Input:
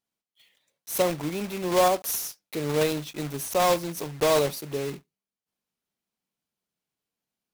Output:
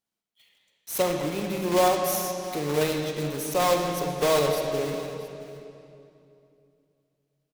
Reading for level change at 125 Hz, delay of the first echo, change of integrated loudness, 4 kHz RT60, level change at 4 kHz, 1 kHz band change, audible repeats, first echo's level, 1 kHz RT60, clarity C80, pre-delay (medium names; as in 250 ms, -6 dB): +1.5 dB, 675 ms, +0.5 dB, 2.3 s, +1.0 dB, +0.5 dB, 1, -18.0 dB, 2.6 s, 4.0 dB, 34 ms